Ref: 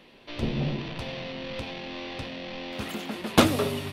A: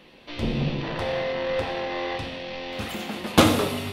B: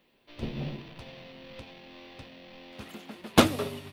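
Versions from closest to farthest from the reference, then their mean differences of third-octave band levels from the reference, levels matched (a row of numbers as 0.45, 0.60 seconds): A, B; 2.5, 7.0 decibels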